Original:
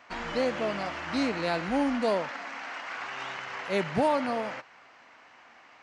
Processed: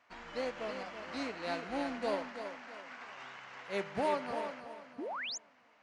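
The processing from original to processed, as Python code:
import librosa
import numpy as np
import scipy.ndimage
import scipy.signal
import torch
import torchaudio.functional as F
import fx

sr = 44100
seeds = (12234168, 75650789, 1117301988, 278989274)

y = fx.comb_fb(x, sr, f0_hz=99.0, decay_s=1.7, harmonics='all', damping=0.0, mix_pct=60)
y = fx.echo_feedback(y, sr, ms=330, feedback_pct=41, wet_db=-6.5)
y = fx.dynamic_eq(y, sr, hz=160.0, q=0.73, threshold_db=-51.0, ratio=4.0, max_db=-5)
y = fx.spec_paint(y, sr, seeds[0], shape='rise', start_s=4.98, length_s=0.4, low_hz=240.0, high_hz=7400.0, level_db=-37.0)
y = fx.upward_expand(y, sr, threshold_db=-45.0, expansion=1.5)
y = y * librosa.db_to_amplitude(1.0)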